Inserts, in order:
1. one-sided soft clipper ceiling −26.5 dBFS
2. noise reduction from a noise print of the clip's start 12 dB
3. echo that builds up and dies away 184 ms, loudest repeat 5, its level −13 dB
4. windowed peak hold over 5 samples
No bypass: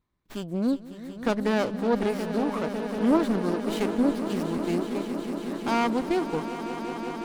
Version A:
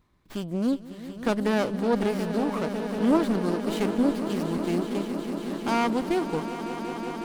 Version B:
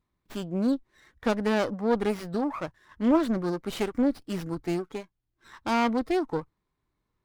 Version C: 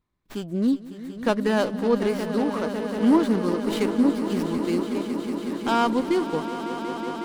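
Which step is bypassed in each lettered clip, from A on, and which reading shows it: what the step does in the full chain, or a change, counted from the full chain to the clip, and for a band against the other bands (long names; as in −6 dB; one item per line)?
2, 125 Hz band +1.5 dB
3, change in momentary loudness spread +4 LU
1, change in crest factor −1.5 dB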